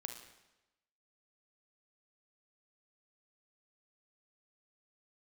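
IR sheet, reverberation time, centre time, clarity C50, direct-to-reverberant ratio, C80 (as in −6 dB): 1.0 s, 28 ms, 6.0 dB, 4.0 dB, 9.0 dB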